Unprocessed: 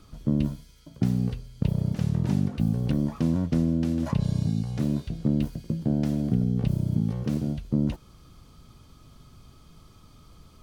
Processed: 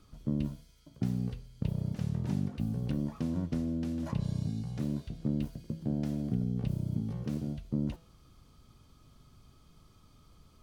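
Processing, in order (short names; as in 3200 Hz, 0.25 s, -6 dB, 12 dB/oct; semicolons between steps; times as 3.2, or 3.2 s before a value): de-hum 165.7 Hz, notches 32; gain -7.5 dB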